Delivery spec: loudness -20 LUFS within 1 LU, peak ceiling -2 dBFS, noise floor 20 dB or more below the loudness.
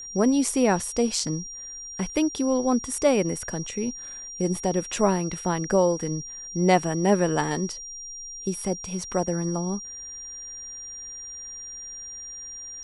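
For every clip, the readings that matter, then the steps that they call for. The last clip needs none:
steady tone 5700 Hz; tone level -36 dBFS; loudness -26.5 LUFS; peak -5.5 dBFS; loudness target -20.0 LUFS
-> notch 5700 Hz, Q 30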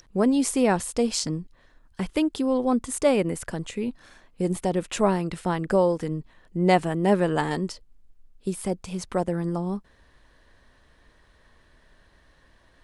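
steady tone none; loudness -25.5 LUFS; peak -5.5 dBFS; loudness target -20.0 LUFS
-> gain +5.5 dB; limiter -2 dBFS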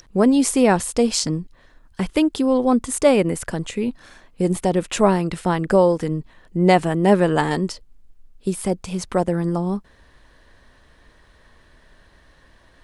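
loudness -20.0 LUFS; peak -2.0 dBFS; noise floor -54 dBFS

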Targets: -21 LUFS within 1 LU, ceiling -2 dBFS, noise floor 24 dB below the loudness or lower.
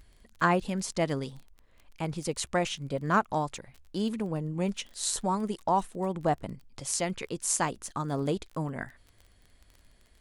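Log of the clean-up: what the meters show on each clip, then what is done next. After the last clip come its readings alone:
ticks 22/s; loudness -31.0 LUFS; peak -11.0 dBFS; loudness target -21.0 LUFS
-> de-click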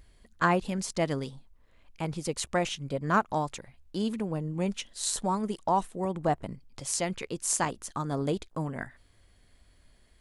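ticks 0/s; loudness -31.0 LUFS; peak -11.0 dBFS; loudness target -21.0 LUFS
-> gain +10 dB; limiter -2 dBFS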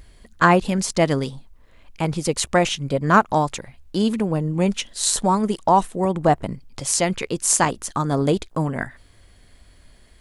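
loudness -21.0 LUFS; peak -2.0 dBFS; noise floor -52 dBFS

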